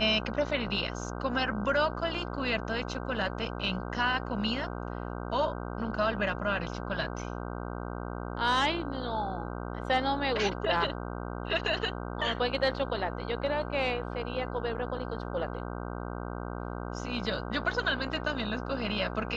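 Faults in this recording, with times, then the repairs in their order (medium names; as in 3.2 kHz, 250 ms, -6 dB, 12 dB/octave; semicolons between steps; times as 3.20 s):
buzz 60 Hz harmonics 26 -37 dBFS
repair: de-hum 60 Hz, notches 26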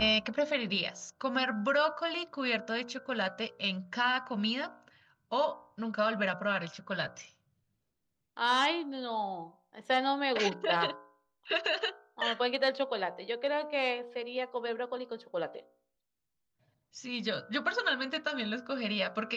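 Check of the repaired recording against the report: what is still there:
nothing left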